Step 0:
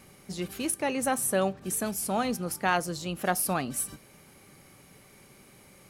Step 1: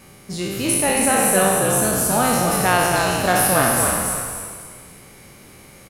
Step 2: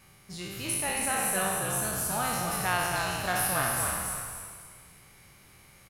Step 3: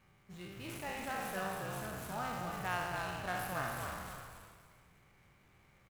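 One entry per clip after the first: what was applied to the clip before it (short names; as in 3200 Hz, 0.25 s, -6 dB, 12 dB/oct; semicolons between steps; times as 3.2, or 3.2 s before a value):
spectral trails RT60 1.66 s; on a send: frequency-shifting echo 0.276 s, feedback 32%, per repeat -59 Hz, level -4 dB; on the sum: gain +5.5 dB
graphic EQ 250/500/8000 Hz -8/-7/-3 dB; gain -8.5 dB
median filter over 9 samples; gain -8 dB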